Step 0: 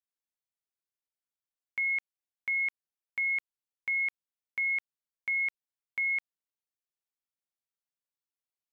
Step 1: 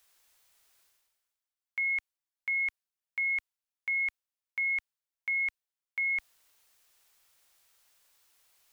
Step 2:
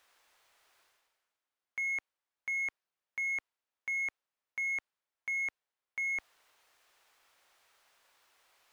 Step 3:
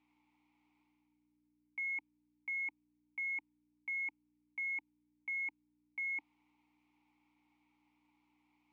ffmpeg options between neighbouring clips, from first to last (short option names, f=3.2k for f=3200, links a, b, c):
-af "equalizer=f=200:w=0.73:g=-14,areverse,acompressor=mode=upward:threshold=-46dB:ratio=2.5,areverse"
-filter_complex "[0:a]asplit=2[a][b];[b]highpass=f=720:p=1,volume=15dB,asoftclip=type=tanh:threshold=-25.5dB[c];[a][c]amix=inputs=2:normalize=0,lowpass=f=1.1k:p=1,volume=-6dB,volume=1.5dB"
-filter_complex "[0:a]aeval=exprs='val(0)+0.000398*(sin(2*PI*60*n/s)+sin(2*PI*2*60*n/s)/2+sin(2*PI*3*60*n/s)/3+sin(2*PI*4*60*n/s)/4+sin(2*PI*5*60*n/s)/5)':c=same,asplit=3[a][b][c];[a]bandpass=f=300:t=q:w=8,volume=0dB[d];[b]bandpass=f=870:t=q:w=8,volume=-6dB[e];[c]bandpass=f=2.24k:t=q:w=8,volume=-9dB[f];[d][e][f]amix=inputs=3:normalize=0,volume=6dB"